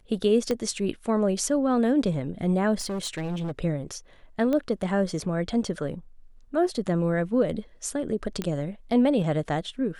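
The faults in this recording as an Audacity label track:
0.510000	0.510000	pop -14 dBFS
2.790000	3.520000	clipped -27 dBFS
4.530000	4.530000	pop -16 dBFS
8.420000	8.420000	pop -15 dBFS

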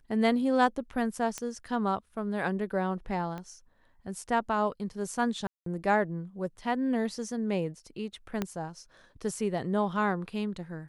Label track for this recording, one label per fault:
1.380000	1.380000	pop -19 dBFS
3.380000	3.380000	pop -26 dBFS
5.470000	5.660000	gap 0.193 s
8.420000	8.420000	pop -16 dBFS

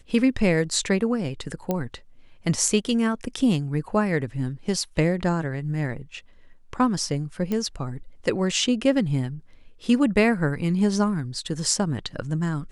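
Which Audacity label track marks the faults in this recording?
1.710000	1.710000	pop -12 dBFS
7.520000	7.520000	pop -15 dBFS

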